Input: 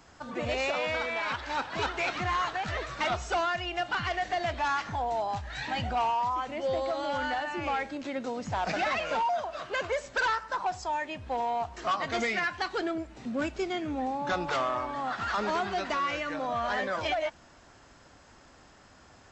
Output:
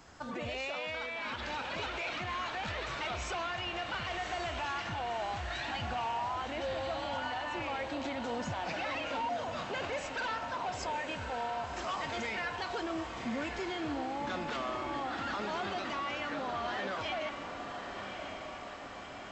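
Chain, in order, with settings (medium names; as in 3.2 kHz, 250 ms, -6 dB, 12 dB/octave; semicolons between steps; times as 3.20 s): dynamic bell 3 kHz, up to +5 dB, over -49 dBFS, Q 1.5; peak limiter -30.5 dBFS, peak gain reduction 11.5 dB; echo that smears into a reverb 1148 ms, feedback 63%, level -6.5 dB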